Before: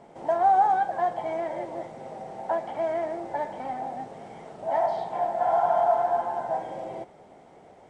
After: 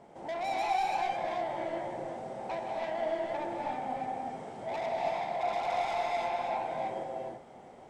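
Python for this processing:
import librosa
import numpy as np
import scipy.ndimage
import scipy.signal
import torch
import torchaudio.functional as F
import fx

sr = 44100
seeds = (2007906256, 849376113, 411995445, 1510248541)

y = 10.0 ** (-29.5 / 20.0) * np.tanh(x / 10.0 ** (-29.5 / 20.0))
y = fx.rev_gated(y, sr, seeds[0], gate_ms=360, shape='rising', drr_db=-2.0)
y = F.gain(torch.from_numpy(y), -4.0).numpy()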